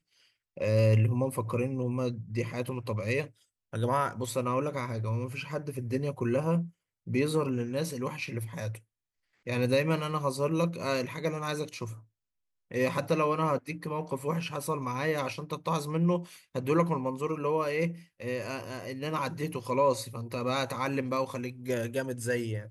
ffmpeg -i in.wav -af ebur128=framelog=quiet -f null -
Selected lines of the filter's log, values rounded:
Integrated loudness:
  I:         -31.1 LUFS
  Threshold: -41.3 LUFS
Loudness range:
  LRA:         1.9 LU
  Threshold: -51.6 LUFS
  LRA low:   -32.4 LUFS
  LRA high:  -30.5 LUFS